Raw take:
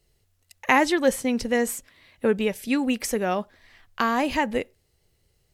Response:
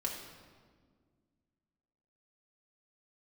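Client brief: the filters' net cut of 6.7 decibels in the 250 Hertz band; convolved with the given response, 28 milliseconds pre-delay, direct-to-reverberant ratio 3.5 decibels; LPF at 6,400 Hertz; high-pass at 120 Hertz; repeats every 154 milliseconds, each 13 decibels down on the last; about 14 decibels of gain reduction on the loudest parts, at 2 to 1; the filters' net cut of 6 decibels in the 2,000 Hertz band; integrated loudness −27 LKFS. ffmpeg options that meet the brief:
-filter_complex "[0:a]highpass=120,lowpass=6400,equalizer=frequency=250:width_type=o:gain=-7.5,equalizer=frequency=2000:width_type=o:gain=-7,acompressor=threshold=-44dB:ratio=2,aecho=1:1:154|308|462:0.224|0.0493|0.0108,asplit=2[link_01][link_02];[1:a]atrim=start_sample=2205,adelay=28[link_03];[link_02][link_03]afir=irnorm=-1:irlink=0,volume=-6dB[link_04];[link_01][link_04]amix=inputs=2:normalize=0,volume=10.5dB"

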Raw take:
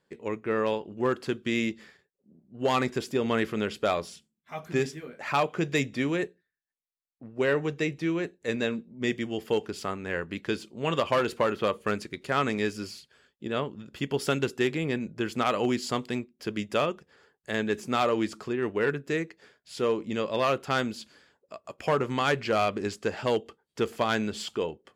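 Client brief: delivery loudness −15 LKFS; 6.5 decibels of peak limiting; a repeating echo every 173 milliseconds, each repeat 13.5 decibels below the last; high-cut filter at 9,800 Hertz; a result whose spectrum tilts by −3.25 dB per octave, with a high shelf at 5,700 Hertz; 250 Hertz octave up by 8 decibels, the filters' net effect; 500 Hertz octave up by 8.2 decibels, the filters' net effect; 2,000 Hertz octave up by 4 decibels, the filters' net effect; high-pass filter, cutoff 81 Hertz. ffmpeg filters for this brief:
ffmpeg -i in.wav -af "highpass=81,lowpass=9800,equalizer=frequency=250:width_type=o:gain=7.5,equalizer=frequency=500:width_type=o:gain=7.5,equalizer=frequency=2000:width_type=o:gain=5.5,highshelf=frequency=5700:gain=-7.5,alimiter=limit=-13dB:level=0:latency=1,aecho=1:1:173|346:0.211|0.0444,volume=9.5dB" out.wav

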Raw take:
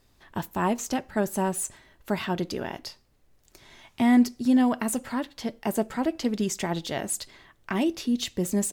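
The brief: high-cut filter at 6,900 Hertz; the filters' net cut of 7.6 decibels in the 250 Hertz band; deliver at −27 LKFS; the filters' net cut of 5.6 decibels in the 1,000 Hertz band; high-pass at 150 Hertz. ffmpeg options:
ffmpeg -i in.wav -af "highpass=150,lowpass=6900,equalizer=frequency=250:width_type=o:gain=-7.5,equalizer=frequency=1000:width_type=o:gain=-7,volume=6dB" out.wav

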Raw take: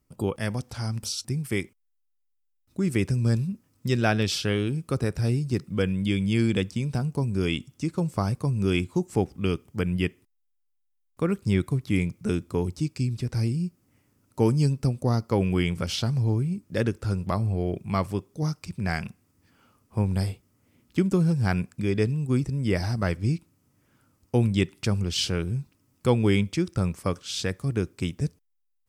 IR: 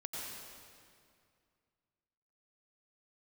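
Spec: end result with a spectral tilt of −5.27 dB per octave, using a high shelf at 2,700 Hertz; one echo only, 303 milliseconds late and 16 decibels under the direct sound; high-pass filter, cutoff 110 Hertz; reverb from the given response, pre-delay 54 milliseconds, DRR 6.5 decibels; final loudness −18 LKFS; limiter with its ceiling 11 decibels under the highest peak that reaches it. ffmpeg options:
-filter_complex "[0:a]highpass=110,highshelf=frequency=2700:gain=6.5,alimiter=limit=-16dB:level=0:latency=1,aecho=1:1:303:0.158,asplit=2[link_01][link_02];[1:a]atrim=start_sample=2205,adelay=54[link_03];[link_02][link_03]afir=irnorm=-1:irlink=0,volume=-7dB[link_04];[link_01][link_04]amix=inputs=2:normalize=0,volume=10.5dB"

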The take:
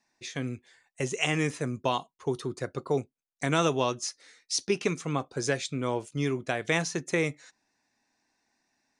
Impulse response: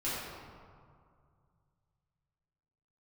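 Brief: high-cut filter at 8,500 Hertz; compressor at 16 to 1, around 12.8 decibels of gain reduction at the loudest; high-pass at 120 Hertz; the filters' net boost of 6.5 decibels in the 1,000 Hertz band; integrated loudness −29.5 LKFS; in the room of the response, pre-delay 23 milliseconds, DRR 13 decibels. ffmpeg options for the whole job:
-filter_complex "[0:a]highpass=120,lowpass=8500,equalizer=frequency=1000:width_type=o:gain=8,acompressor=threshold=-30dB:ratio=16,asplit=2[link_01][link_02];[1:a]atrim=start_sample=2205,adelay=23[link_03];[link_02][link_03]afir=irnorm=-1:irlink=0,volume=-19.5dB[link_04];[link_01][link_04]amix=inputs=2:normalize=0,volume=7dB"

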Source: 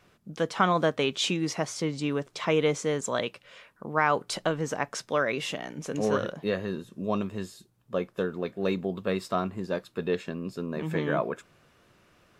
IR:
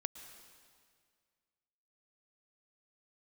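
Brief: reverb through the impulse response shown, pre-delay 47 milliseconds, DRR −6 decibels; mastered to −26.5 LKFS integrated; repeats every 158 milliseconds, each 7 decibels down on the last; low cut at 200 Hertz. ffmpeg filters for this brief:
-filter_complex "[0:a]highpass=200,aecho=1:1:158|316|474|632|790:0.447|0.201|0.0905|0.0407|0.0183,asplit=2[link_01][link_02];[1:a]atrim=start_sample=2205,adelay=47[link_03];[link_02][link_03]afir=irnorm=-1:irlink=0,volume=7.5dB[link_04];[link_01][link_04]amix=inputs=2:normalize=0,volume=-4dB"

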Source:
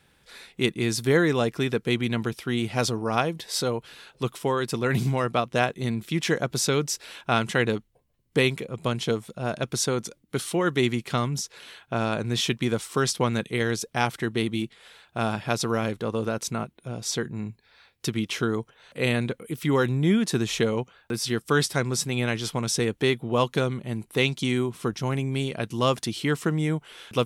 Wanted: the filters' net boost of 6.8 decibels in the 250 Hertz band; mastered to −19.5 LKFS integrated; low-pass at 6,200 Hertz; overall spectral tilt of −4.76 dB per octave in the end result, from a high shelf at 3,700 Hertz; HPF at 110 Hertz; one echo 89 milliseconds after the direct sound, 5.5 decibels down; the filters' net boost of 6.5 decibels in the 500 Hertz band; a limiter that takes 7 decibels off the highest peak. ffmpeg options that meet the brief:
ffmpeg -i in.wav -af "highpass=110,lowpass=6200,equalizer=frequency=250:width_type=o:gain=7,equalizer=frequency=500:width_type=o:gain=5.5,highshelf=frequency=3700:gain=9,alimiter=limit=-8.5dB:level=0:latency=1,aecho=1:1:89:0.531,volume=2dB" out.wav

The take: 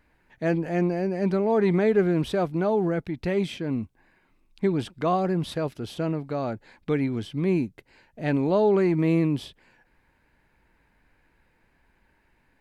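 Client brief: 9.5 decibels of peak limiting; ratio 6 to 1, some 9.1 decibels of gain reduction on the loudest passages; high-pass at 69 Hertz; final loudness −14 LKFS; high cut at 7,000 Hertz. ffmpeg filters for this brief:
ffmpeg -i in.wav -af "highpass=69,lowpass=7000,acompressor=threshold=-26dB:ratio=6,volume=22dB,alimiter=limit=-5.5dB:level=0:latency=1" out.wav

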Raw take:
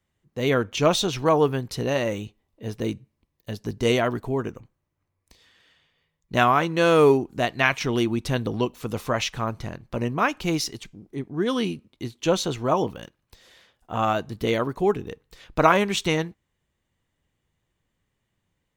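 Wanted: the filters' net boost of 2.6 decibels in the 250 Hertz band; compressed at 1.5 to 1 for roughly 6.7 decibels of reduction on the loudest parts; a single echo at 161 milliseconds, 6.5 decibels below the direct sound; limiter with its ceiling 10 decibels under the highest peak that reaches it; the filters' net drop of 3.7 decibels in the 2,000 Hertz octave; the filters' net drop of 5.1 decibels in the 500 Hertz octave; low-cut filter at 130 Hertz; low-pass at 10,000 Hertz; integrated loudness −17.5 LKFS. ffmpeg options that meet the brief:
ffmpeg -i in.wav -af "highpass=130,lowpass=10000,equalizer=frequency=250:width_type=o:gain=6.5,equalizer=frequency=500:width_type=o:gain=-8.5,equalizer=frequency=2000:width_type=o:gain=-4.5,acompressor=threshold=-33dB:ratio=1.5,alimiter=limit=-22dB:level=0:latency=1,aecho=1:1:161:0.473,volume=15dB" out.wav

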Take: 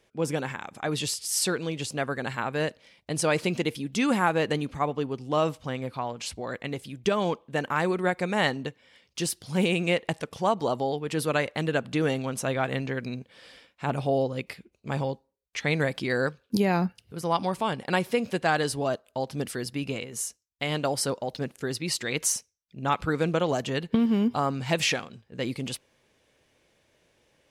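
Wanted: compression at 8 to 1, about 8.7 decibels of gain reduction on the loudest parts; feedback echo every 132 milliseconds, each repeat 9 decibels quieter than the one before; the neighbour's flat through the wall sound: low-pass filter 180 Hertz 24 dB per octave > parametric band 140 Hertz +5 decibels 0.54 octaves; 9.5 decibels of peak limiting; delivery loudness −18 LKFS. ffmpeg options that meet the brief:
ffmpeg -i in.wav -af "acompressor=threshold=-29dB:ratio=8,alimiter=level_in=2.5dB:limit=-24dB:level=0:latency=1,volume=-2.5dB,lowpass=frequency=180:width=0.5412,lowpass=frequency=180:width=1.3066,equalizer=frequency=140:width_type=o:width=0.54:gain=5,aecho=1:1:132|264|396|528:0.355|0.124|0.0435|0.0152,volume=23.5dB" out.wav

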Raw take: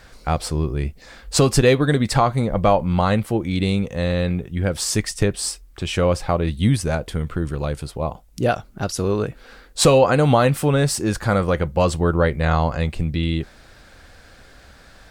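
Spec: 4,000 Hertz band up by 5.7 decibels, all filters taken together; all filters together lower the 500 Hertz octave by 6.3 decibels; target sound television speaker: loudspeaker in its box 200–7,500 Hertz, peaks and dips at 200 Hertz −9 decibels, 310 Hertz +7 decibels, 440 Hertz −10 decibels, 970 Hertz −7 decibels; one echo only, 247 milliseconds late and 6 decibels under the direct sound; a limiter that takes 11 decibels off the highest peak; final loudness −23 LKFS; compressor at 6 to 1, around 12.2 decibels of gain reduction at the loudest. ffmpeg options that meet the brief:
ffmpeg -i in.wav -af "equalizer=frequency=500:width_type=o:gain=-3.5,equalizer=frequency=4000:width_type=o:gain=7,acompressor=threshold=-24dB:ratio=6,alimiter=limit=-22dB:level=0:latency=1,highpass=frequency=200:width=0.5412,highpass=frequency=200:width=1.3066,equalizer=frequency=200:width_type=q:width=4:gain=-9,equalizer=frequency=310:width_type=q:width=4:gain=7,equalizer=frequency=440:width_type=q:width=4:gain=-10,equalizer=frequency=970:width_type=q:width=4:gain=-7,lowpass=frequency=7500:width=0.5412,lowpass=frequency=7500:width=1.3066,aecho=1:1:247:0.501,volume=12dB" out.wav

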